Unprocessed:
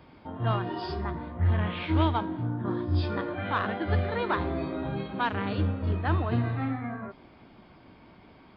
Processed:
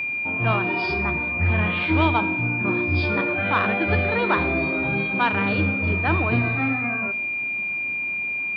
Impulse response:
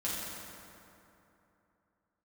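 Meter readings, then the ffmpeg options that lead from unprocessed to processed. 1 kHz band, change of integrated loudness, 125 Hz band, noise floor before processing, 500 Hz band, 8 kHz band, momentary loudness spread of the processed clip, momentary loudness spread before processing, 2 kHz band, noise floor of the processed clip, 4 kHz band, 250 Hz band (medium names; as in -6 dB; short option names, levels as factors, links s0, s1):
+6.5 dB, +8.0 dB, +3.0 dB, -54 dBFS, +6.5 dB, no reading, 4 LU, 7 LU, +16.5 dB, -27 dBFS, +6.0 dB, +6.0 dB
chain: -filter_complex "[0:a]aeval=exprs='val(0)+0.0316*sin(2*PI*2400*n/s)':c=same,highpass=88,acontrast=79,asplit=2[s0][s1];[1:a]atrim=start_sample=2205,afade=t=out:st=0.2:d=0.01,atrim=end_sample=9261[s2];[s1][s2]afir=irnorm=-1:irlink=0,volume=0.15[s3];[s0][s3]amix=inputs=2:normalize=0,volume=0.841"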